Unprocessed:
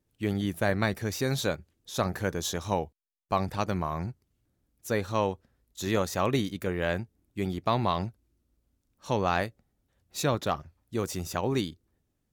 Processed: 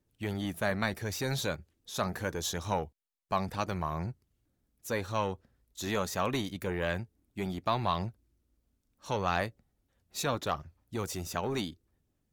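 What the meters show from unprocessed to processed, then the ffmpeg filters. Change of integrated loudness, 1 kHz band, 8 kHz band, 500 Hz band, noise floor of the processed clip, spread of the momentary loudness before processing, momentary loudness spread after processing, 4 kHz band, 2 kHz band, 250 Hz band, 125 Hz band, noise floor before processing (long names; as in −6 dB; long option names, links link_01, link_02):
−3.5 dB, −2.5 dB, −2.0 dB, −4.5 dB, −78 dBFS, 10 LU, 10 LU, −2.0 dB, −2.0 dB, −5.0 dB, −4.5 dB, −78 dBFS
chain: -filter_complex "[0:a]aphaser=in_gain=1:out_gain=1:delay=4.8:decay=0.22:speed=0.74:type=sinusoidal,acrossover=split=720|2400[link_01][link_02][link_03];[link_01]asoftclip=type=tanh:threshold=-27dB[link_04];[link_04][link_02][link_03]amix=inputs=3:normalize=0,volume=-2dB"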